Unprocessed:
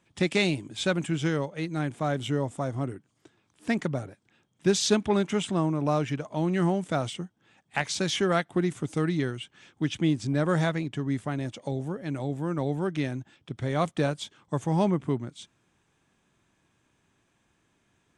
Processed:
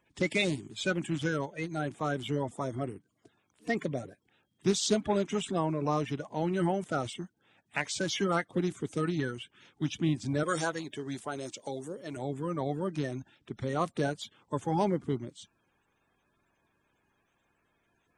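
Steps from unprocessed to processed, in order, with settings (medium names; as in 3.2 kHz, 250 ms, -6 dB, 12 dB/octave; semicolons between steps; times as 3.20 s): coarse spectral quantiser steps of 30 dB; 10.43–12.17 s: tone controls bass -10 dB, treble +9 dB; trim -3.5 dB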